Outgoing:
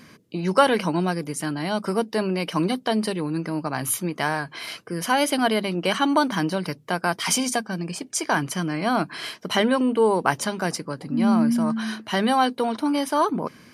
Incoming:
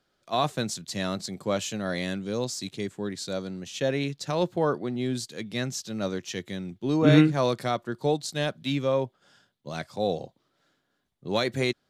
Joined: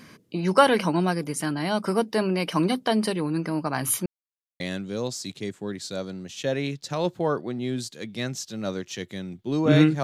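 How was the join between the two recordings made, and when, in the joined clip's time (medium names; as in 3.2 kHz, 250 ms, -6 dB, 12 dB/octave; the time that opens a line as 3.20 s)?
outgoing
4.06–4.60 s: mute
4.60 s: go over to incoming from 1.97 s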